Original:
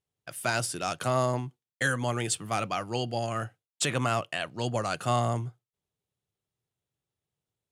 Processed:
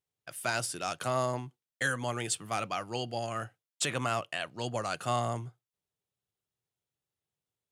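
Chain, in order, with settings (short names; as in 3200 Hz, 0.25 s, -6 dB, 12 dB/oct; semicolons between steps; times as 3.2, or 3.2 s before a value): low shelf 360 Hz -4.5 dB; gain -2.5 dB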